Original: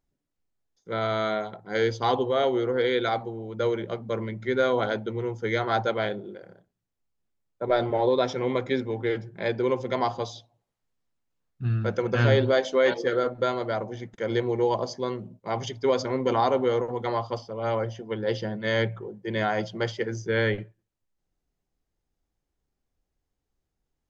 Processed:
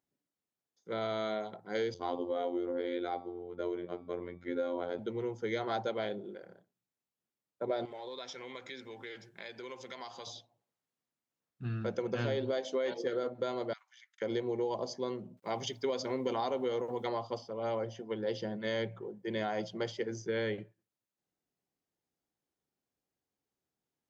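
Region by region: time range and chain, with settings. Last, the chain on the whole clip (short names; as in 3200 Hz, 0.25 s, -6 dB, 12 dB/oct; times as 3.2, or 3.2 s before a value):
1.94–4.99 high shelf 2600 Hz -12 dB + robotiser 87.6 Hz + de-hum 189.5 Hz, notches 39
7.85–10.27 tilt shelf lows -9 dB, about 1200 Hz + compressor 3:1, threshold -39 dBFS
13.73–14.22 Bessel high-pass 2300 Hz, order 8 + high shelf 3500 Hz -6 dB
15.37–17.09 bell 3300 Hz +4 dB 2.5 oct + requantised 12-bit, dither none
whole clip: HPF 160 Hz 12 dB/oct; dynamic EQ 1500 Hz, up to -6 dB, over -42 dBFS, Q 1.1; compressor, threshold -25 dBFS; gain -4.5 dB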